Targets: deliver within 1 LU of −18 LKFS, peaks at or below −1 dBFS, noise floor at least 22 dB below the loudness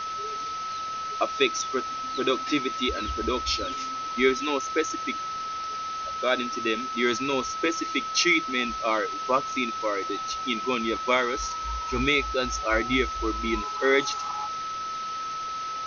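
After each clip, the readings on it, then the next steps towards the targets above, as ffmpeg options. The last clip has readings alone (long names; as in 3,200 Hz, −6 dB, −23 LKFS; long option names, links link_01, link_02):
interfering tone 1,300 Hz; level of the tone −30 dBFS; background noise floor −33 dBFS; target noise floor −49 dBFS; integrated loudness −26.5 LKFS; sample peak −8.5 dBFS; target loudness −18.0 LKFS
→ -af "bandreject=frequency=1300:width=30"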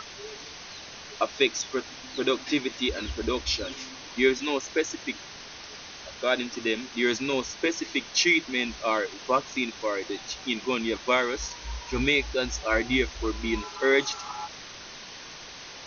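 interfering tone none found; background noise floor −43 dBFS; target noise floor −50 dBFS
→ -af "afftdn=noise_reduction=7:noise_floor=-43"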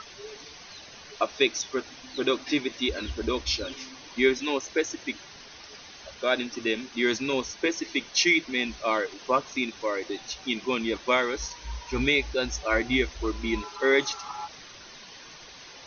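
background noise floor −47 dBFS; target noise floor −50 dBFS
→ -af "afftdn=noise_reduction=6:noise_floor=-47"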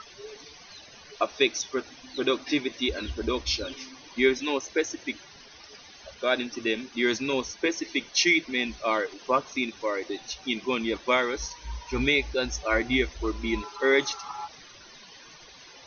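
background noise floor −50 dBFS; integrated loudness −27.5 LKFS; sample peak −9.0 dBFS; target loudness −18.0 LKFS
→ -af "volume=9.5dB,alimiter=limit=-1dB:level=0:latency=1"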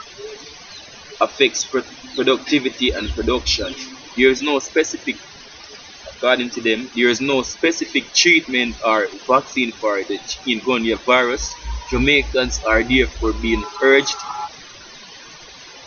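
integrated loudness −18.0 LKFS; sample peak −1.0 dBFS; background noise floor −40 dBFS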